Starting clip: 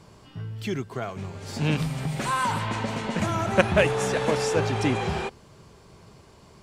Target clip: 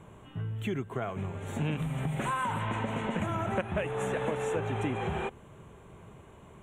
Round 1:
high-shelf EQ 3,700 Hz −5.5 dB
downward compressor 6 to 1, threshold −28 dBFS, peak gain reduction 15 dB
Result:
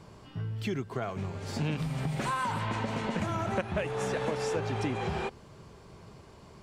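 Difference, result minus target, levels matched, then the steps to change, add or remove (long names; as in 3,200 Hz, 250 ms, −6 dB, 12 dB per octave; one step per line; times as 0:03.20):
4,000 Hz band +3.5 dB
add after downward compressor: Butterworth band-reject 4,900 Hz, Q 1.4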